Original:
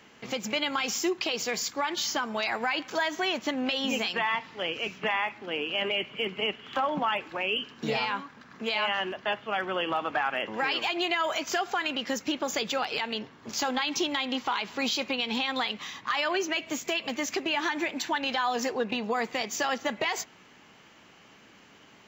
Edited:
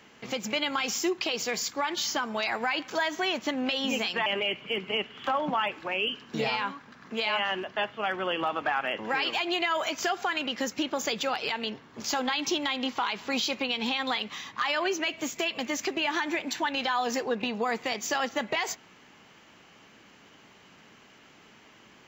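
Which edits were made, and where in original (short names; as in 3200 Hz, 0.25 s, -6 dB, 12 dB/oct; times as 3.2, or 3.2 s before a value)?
4.26–5.75 cut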